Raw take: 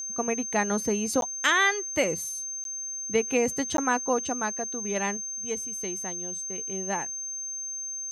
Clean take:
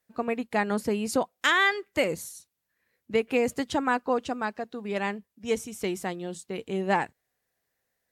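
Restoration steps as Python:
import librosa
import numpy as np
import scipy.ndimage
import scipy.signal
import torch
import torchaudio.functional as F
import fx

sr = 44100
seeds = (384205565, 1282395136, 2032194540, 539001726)

y = fx.notch(x, sr, hz=6300.0, q=30.0)
y = fx.fix_interpolate(y, sr, at_s=(1.21, 2.64, 3.77), length_ms=12.0)
y = fx.fix_level(y, sr, at_s=5.17, step_db=6.5)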